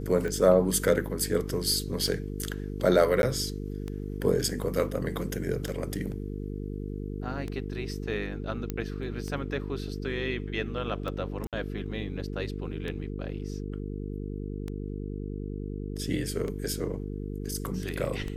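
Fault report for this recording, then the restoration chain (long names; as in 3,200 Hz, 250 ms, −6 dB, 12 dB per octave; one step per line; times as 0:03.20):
mains buzz 50 Hz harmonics 9 −35 dBFS
scratch tick 33 1/3 rpm −22 dBFS
0:03.22–0:03.23: drop-out 11 ms
0:08.70: click −17 dBFS
0:11.47–0:11.53: drop-out 57 ms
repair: click removal
hum removal 50 Hz, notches 9
repair the gap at 0:03.22, 11 ms
repair the gap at 0:11.47, 57 ms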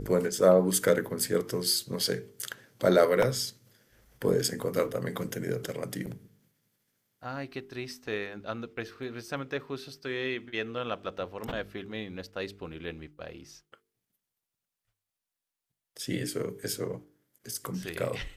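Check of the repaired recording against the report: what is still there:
none of them is left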